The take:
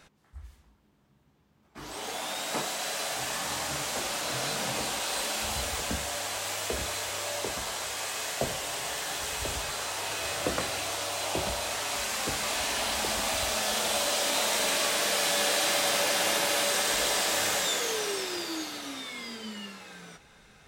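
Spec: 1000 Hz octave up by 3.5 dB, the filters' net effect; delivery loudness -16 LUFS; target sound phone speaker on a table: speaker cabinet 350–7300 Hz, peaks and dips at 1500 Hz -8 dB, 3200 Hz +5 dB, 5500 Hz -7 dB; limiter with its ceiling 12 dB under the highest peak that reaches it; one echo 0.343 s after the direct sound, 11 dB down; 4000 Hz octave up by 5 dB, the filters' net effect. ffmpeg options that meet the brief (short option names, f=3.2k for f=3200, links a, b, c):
-af "equalizer=f=1k:t=o:g=5.5,equalizer=f=4k:t=o:g=4,alimiter=limit=-22.5dB:level=0:latency=1,highpass=f=350:w=0.5412,highpass=f=350:w=1.3066,equalizer=f=1.5k:t=q:w=4:g=-8,equalizer=f=3.2k:t=q:w=4:g=5,equalizer=f=5.5k:t=q:w=4:g=-7,lowpass=f=7.3k:w=0.5412,lowpass=f=7.3k:w=1.3066,aecho=1:1:343:0.282,volume=15dB"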